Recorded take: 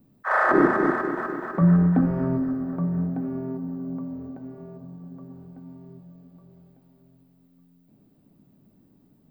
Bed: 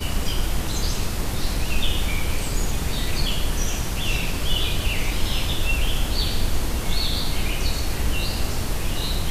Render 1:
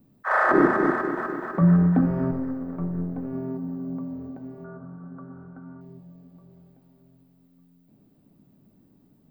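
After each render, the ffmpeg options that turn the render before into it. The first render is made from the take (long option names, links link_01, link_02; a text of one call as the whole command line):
ffmpeg -i in.wav -filter_complex "[0:a]asettb=1/sr,asplit=3[link_01][link_02][link_03];[link_01]atrim=end=2.314[link_04];[link_02]atrim=start=2.31:end=3.33,asetpts=PTS-STARTPTS,afade=type=in:duration=0.004:curve=qsin,afade=type=out:start_time=1.016:duration=0.004:curve=qsin,aeval=exprs='(tanh(10*val(0)+0.65)-tanh(0.65))/10':channel_layout=same[link_05];[link_03]atrim=start=3.326[link_06];[link_04][link_05]acrossfade=duration=0.004:curve1=hsin:curve2=qsin[link_07];[link_07][link_06]acrossfade=duration=0.004:curve1=qsin:curve2=hsin,asettb=1/sr,asplit=3[link_08][link_09][link_10];[link_08]atrim=end=4.644[link_11];[link_09]atrim=start=4.64:end=5.81,asetpts=PTS-STARTPTS,afade=type=in:duration=0.004:curve=qsin,afade=type=out:start_time=1.166:duration=0.004:curve=qsin,lowpass=frequency=1400:width_type=q:width=12[link_12];[link_10]atrim=start=5.806[link_13];[link_11][link_12]acrossfade=duration=0.004:curve1=hsin:curve2=qsin[link_14];[link_14][link_13]acrossfade=duration=0.004:curve1=qsin:curve2=hsin" out.wav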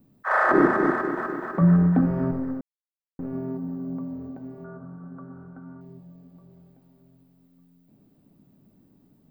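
ffmpeg -i in.wav -filter_complex "[0:a]asplit=3[link_01][link_02][link_03];[link_01]atrim=end=2.61,asetpts=PTS-STARTPTS,afade=type=out:start_time=2.606:duration=0.004:curve=hsin[link_04];[link_02]atrim=start=2.61:end=3.19,asetpts=PTS-STARTPTS,volume=0[link_05];[link_03]atrim=start=3.19,asetpts=PTS-STARTPTS,afade=type=in:duration=0.004:curve=hsin[link_06];[link_04][link_05][link_06]concat=n=3:v=0:a=1" out.wav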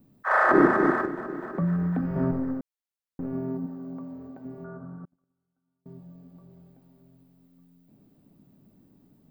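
ffmpeg -i in.wav -filter_complex "[0:a]asettb=1/sr,asplit=3[link_01][link_02][link_03];[link_01]atrim=end=1.054[link_04];[link_02]atrim=start=1.05:end=2.16,asetpts=PTS-STARTPTS,afade=type=in:duration=0.004:curve=qsin,afade=type=out:start_time=1.106:duration=0.004:curve=qsin,acrossover=split=180|780|1600[link_05][link_06][link_07][link_08];[link_05]acompressor=threshold=-32dB:ratio=3[link_09];[link_06]acompressor=threshold=-32dB:ratio=3[link_10];[link_07]acompressor=threshold=-49dB:ratio=3[link_11];[link_08]acompressor=threshold=-48dB:ratio=3[link_12];[link_09][link_10][link_11][link_12]amix=inputs=4:normalize=0[link_13];[link_03]atrim=start=2.156[link_14];[link_04][link_13]acrossfade=duration=0.004:curve1=hsin:curve2=qsin[link_15];[link_15][link_14]acrossfade=duration=0.004:curve1=qsin:curve2=hsin,asettb=1/sr,asplit=3[link_16][link_17][link_18];[link_16]atrim=end=3.664[link_19];[link_17]atrim=start=3.66:end=4.45,asetpts=PTS-STARTPTS,afade=type=in:duration=0.004:curve=qsin,afade=type=out:start_time=0.786:duration=0.004:curve=qsin,lowshelf=frequency=310:gain=-9.5[link_20];[link_18]atrim=start=4.446[link_21];[link_19][link_20]acrossfade=duration=0.004:curve1=hsin:curve2=qsin[link_22];[link_22][link_21]acrossfade=duration=0.004:curve1=qsin:curve2=hsin,asettb=1/sr,asplit=3[link_23][link_24][link_25];[link_23]atrim=end=5.054[link_26];[link_24]atrim=start=5.05:end=5.86,asetpts=PTS-STARTPTS,afade=type=in:duration=0.004:curve=qsin,afade=type=out:start_time=0.806:duration=0.004:curve=qsin,agate=range=-38dB:threshold=-36dB:ratio=16:release=100:detection=peak[link_27];[link_25]atrim=start=5.856[link_28];[link_26][link_27]acrossfade=duration=0.004:curve1=hsin:curve2=qsin[link_29];[link_29][link_28]acrossfade=duration=0.004:curve1=qsin:curve2=hsin" out.wav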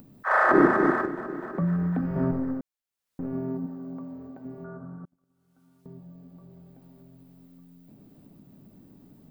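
ffmpeg -i in.wav -af "acompressor=mode=upward:threshold=-44dB:ratio=2.5" out.wav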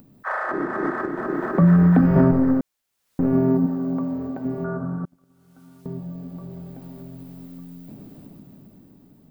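ffmpeg -i in.wav -af "alimiter=limit=-17.5dB:level=0:latency=1:release=380,dynaudnorm=framelen=200:gausssize=13:maxgain=13dB" out.wav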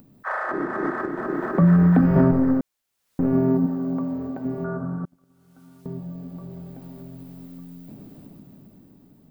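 ffmpeg -i in.wav -af "volume=-1dB" out.wav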